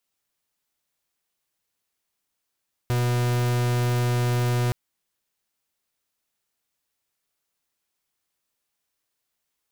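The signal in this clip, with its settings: pulse 122 Hz, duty 44% -22.5 dBFS 1.82 s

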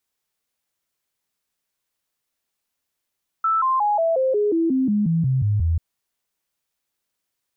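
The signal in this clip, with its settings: stepped sine 1320 Hz down, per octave 3, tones 13, 0.18 s, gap 0.00 s -16.5 dBFS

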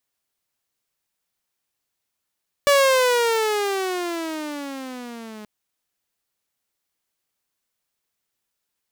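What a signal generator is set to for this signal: gliding synth tone saw, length 2.78 s, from 576 Hz, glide -17.5 st, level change -23.5 dB, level -10 dB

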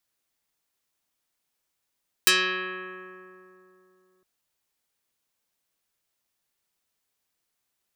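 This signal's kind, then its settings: plucked string F#3, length 1.96 s, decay 3.23 s, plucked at 0.26, dark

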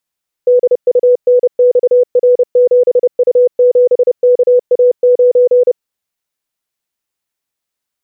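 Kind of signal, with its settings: Morse "DUNXR7U7KA9" 30 wpm 494 Hz -4.5 dBFS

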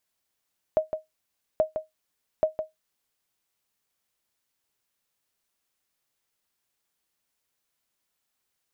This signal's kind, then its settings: sonar ping 627 Hz, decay 0.16 s, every 0.83 s, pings 3, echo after 0.16 s, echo -8 dB -13 dBFS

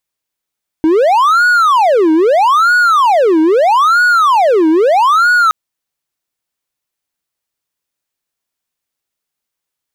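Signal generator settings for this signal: siren wail 313–1460 Hz 0.78/s triangle -4.5 dBFS 4.67 s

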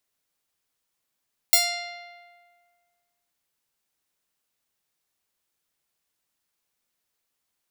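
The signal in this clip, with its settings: plucked string F5, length 1.77 s, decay 1.78 s, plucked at 0.44, bright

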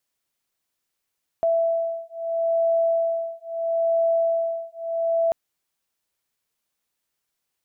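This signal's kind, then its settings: beating tones 664 Hz, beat 0.76 Hz, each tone -23 dBFS 3.89 s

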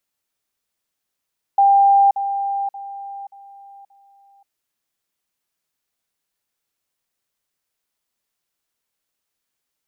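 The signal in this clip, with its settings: level ladder 795 Hz -9.5 dBFS, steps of -10 dB, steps 5, 0.53 s 0.05 s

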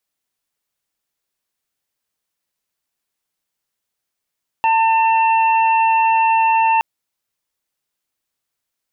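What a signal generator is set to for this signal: steady additive tone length 2.17 s, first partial 898 Hz, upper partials -18.5/-9 dB, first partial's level -12 dB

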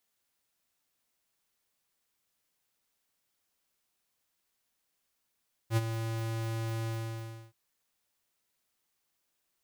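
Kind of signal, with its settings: ADSR square 113 Hz, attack 68 ms, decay 33 ms, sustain -9.5 dB, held 1.17 s, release 0.655 s -24.5 dBFS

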